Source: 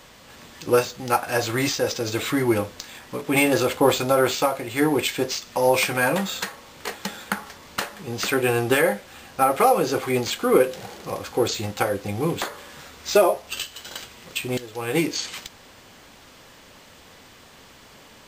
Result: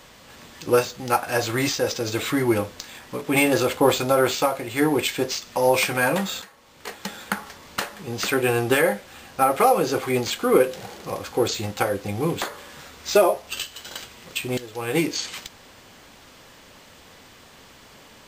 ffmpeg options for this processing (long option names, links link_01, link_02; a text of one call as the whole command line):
ffmpeg -i in.wav -filter_complex "[0:a]asplit=2[link_01][link_02];[link_01]atrim=end=6.42,asetpts=PTS-STARTPTS,afade=type=out:start_time=6.416:duration=0.004:curve=hsin:silence=0.149624[link_03];[link_02]atrim=start=6.42,asetpts=PTS-STARTPTS,afade=type=in:duration=0.83:silence=0.149624[link_04];[link_03][link_04]concat=n=2:v=0:a=1" out.wav